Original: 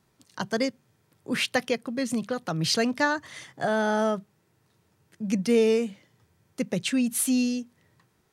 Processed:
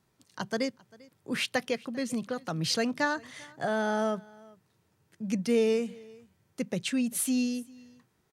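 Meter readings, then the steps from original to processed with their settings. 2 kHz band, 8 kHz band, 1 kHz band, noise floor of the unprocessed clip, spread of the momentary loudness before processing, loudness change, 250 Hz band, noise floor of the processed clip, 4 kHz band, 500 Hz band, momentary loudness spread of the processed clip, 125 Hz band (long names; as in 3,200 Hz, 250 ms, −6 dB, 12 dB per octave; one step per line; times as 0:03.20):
−4.0 dB, −4.0 dB, −4.0 dB, −69 dBFS, 11 LU, −4.0 dB, −4.0 dB, −72 dBFS, −4.0 dB, −4.0 dB, 13 LU, −4.0 dB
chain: single-tap delay 395 ms −24 dB
level −4 dB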